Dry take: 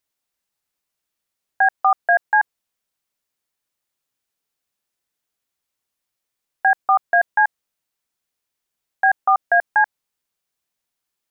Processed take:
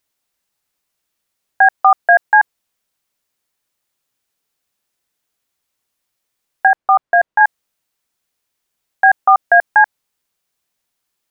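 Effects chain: 6.67–7.41 LPF 1400 Hz 6 dB/oct; gain +6 dB

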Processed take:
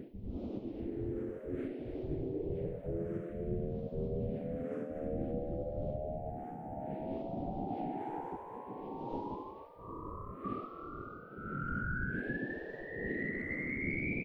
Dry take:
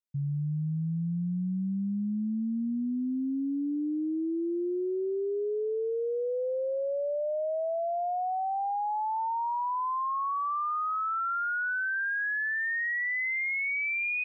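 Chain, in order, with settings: wind noise 120 Hz -33 dBFS; bell 1000 Hz -5.5 dB 0.48 oct; notches 60/120/180/240/300 Hz; thinning echo 0.157 s, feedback 59%, level -13.5 dB; phaser stages 4, 0.57 Hz, lowest notch 690–1700 Hz; on a send: frequency-shifting echo 0.243 s, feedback 50%, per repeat +95 Hz, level -13 dB; on the sum: compressor 6:1, threshold -28 dBFS, peak gain reduction 12 dB; spectral gate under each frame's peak -15 dB weak; gain +8.5 dB

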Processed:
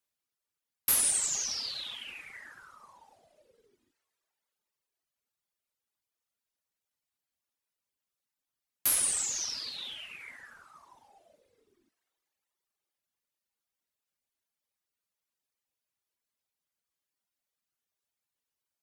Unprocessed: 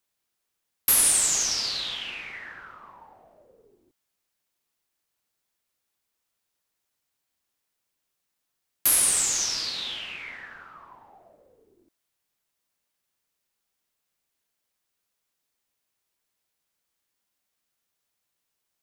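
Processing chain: two-slope reverb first 0.29 s, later 3.8 s, from -18 dB, DRR 9 dB; reverb removal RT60 1.5 s; added harmonics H 3 -23 dB, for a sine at -6.5 dBFS; gain -4.5 dB

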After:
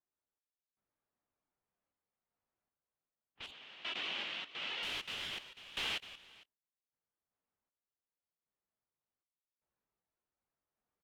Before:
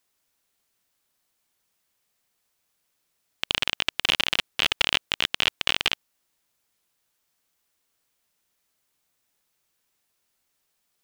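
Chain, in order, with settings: phase scrambler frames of 0.1 s; low-pass opened by the level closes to 1200 Hz, open at -27 dBFS; level quantiser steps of 19 dB; echo 0.455 s -14 dB; random-step tremolo 2.6 Hz, depth 90%; 3.51–4.83 BPF 190–3900 Hz; gain +1.5 dB

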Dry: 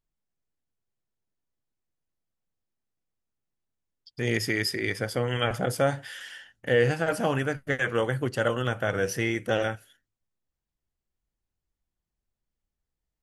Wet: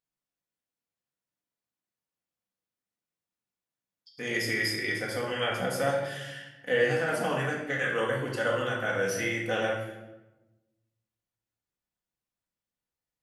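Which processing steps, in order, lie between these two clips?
HPF 400 Hz 6 dB/oct; reverb RT60 1.1 s, pre-delay 4 ms, DRR -3.5 dB; gain -5 dB

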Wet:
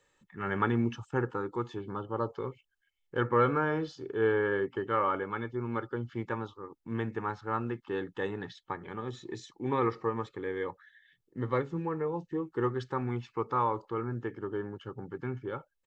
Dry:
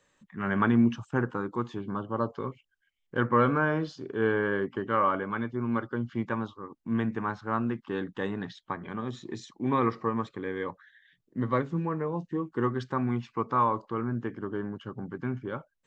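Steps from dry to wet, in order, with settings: comb 2.3 ms, depth 50%; gain -3 dB

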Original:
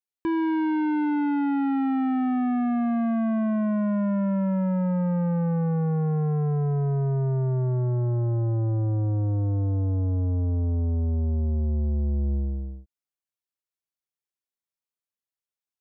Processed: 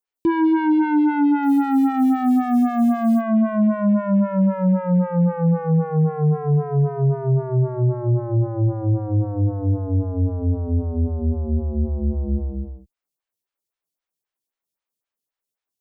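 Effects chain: 1.43–3.21 requantised 8-bit, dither none; photocell phaser 3.8 Hz; gain +9 dB

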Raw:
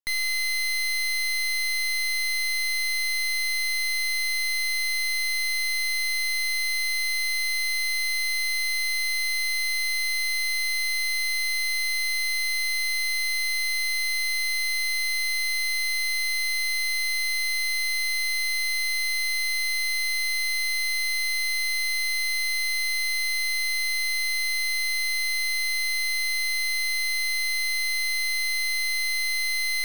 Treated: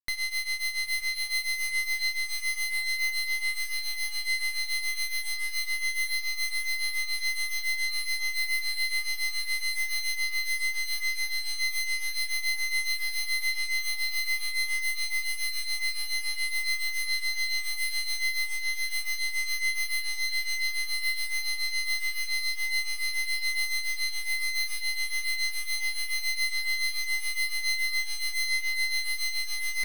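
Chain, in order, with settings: grains 0.19 s, grains 7.1/s, pitch spread up and down by 0 st; diffused feedback echo 0.937 s, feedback 63%, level -9 dB; gain -1.5 dB

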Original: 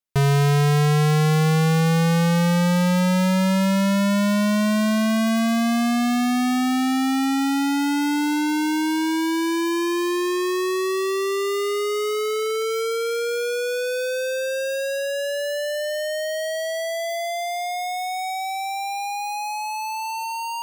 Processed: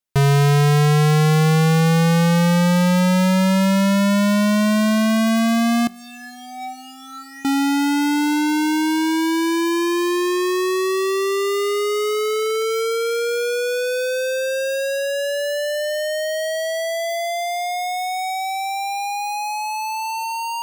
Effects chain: 5.87–7.45 resonator 190 Hz, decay 0.37 s, harmonics all, mix 100%; gain +3 dB

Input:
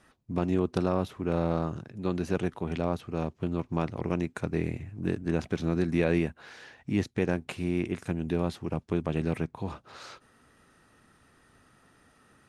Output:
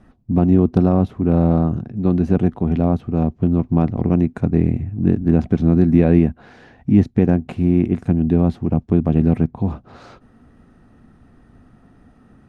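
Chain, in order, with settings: tilt -3.5 dB/oct; small resonant body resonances 230/720 Hz, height 7 dB, ringing for 30 ms; gain +3 dB

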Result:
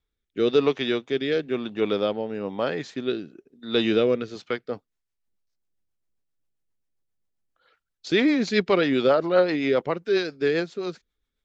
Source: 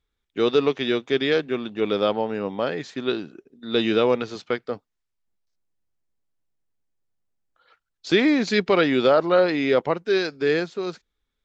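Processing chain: rotary speaker horn 1 Hz, later 7.5 Hz, at 4.22

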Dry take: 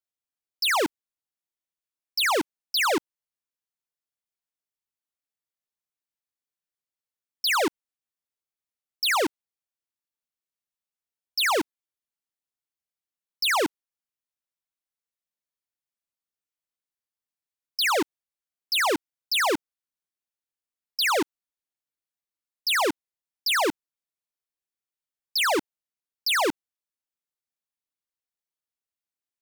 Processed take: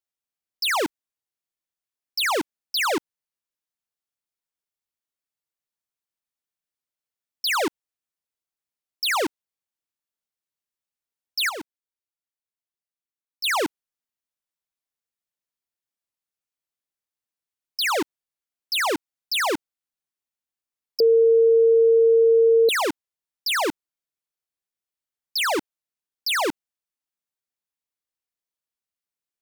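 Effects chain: 11.49–13.44 level quantiser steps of 11 dB; 21–22.69 bleep 456 Hz -12.5 dBFS

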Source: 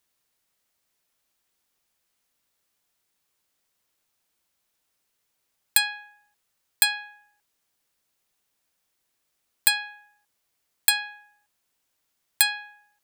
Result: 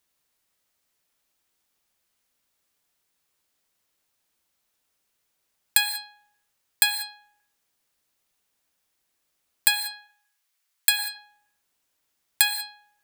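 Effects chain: 9.91–10.99 HPF 1100 Hz 12 dB/oct; non-linear reverb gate 0.21 s flat, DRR 9 dB

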